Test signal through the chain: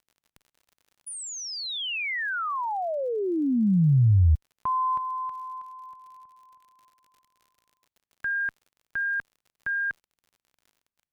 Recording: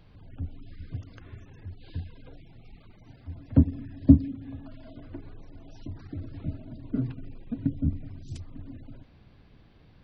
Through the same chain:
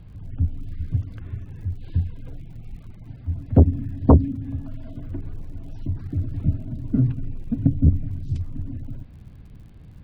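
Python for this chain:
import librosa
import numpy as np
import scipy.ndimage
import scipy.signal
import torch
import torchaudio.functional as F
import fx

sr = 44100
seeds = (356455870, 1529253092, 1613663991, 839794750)

y = fx.bass_treble(x, sr, bass_db=12, treble_db=-8)
y = fx.cheby_harmonics(y, sr, harmonics=(5,), levels_db=(-6,), full_scale_db=5.0)
y = fx.dmg_crackle(y, sr, seeds[0], per_s=64.0, level_db=-38.0)
y = F.gain(torch.from_numpy(y), -9.5).numpy()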